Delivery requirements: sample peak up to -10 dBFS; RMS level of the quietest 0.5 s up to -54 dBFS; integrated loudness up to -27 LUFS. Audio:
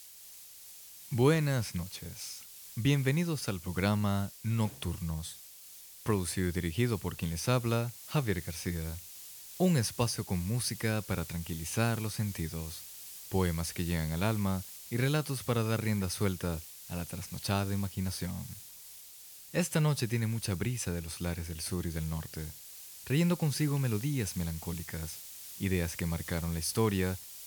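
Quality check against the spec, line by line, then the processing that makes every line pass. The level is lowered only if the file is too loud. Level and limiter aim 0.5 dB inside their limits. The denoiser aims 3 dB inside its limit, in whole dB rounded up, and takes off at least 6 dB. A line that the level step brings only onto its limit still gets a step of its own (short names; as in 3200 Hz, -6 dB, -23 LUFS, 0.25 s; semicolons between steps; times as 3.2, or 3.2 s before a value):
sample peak -13.0 dBFS: OK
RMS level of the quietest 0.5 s -51 dBFS: fail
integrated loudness -33.0 LUFS: OK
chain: denoiser 6 dB, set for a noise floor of -51 dBFS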